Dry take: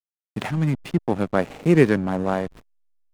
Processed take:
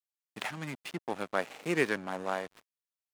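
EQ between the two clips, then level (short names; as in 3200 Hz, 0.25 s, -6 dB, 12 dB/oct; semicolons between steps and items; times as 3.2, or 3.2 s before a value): HPF 1300 Hz 6 dB/oct; -2.5 dB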